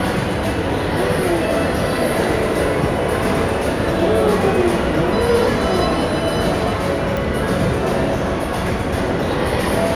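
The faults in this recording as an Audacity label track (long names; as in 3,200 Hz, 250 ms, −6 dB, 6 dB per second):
7.170000	7.170000	click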